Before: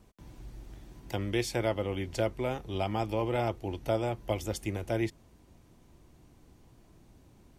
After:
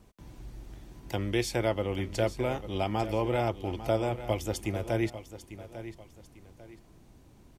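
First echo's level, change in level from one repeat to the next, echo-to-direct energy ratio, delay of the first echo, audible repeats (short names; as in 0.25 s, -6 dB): -13.0 dB, -9.5 dB, -12.5 dB, 0.847 s, 2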